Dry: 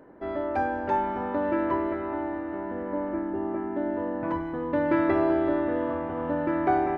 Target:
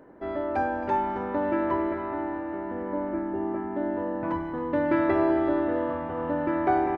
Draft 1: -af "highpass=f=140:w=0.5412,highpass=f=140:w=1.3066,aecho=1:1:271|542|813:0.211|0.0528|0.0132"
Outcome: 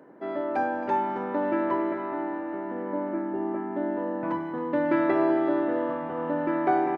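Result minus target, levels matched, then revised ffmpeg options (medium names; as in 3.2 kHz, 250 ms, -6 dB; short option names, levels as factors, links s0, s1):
125 Hz band -3.0 dB
-af "aecho=1:1:271|542|813:0.211|0.0528|0.0132"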